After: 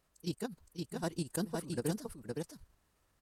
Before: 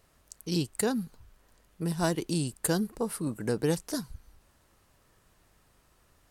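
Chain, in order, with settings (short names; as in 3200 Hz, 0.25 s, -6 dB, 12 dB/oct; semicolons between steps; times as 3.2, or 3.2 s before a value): level quantiser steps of 14 dB; time stretch by phase-locked vocoder 0.51×; echo 0.515 s -3.5 dB; gain -4 dB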